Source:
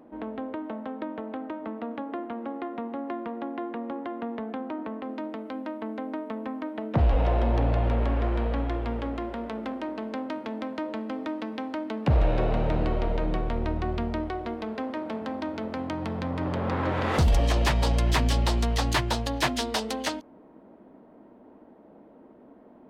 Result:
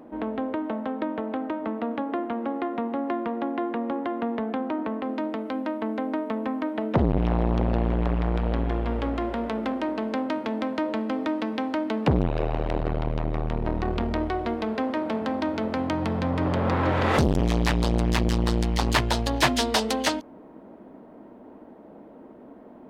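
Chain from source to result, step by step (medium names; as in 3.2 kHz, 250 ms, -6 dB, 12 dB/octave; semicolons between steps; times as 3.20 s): transformer saturation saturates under 370 Hz; trim +5.5 dB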